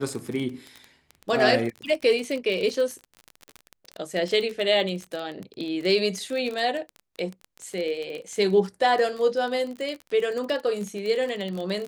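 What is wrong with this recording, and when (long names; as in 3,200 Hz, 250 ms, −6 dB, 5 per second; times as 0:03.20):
surface crackle 31 per second −29 dBFS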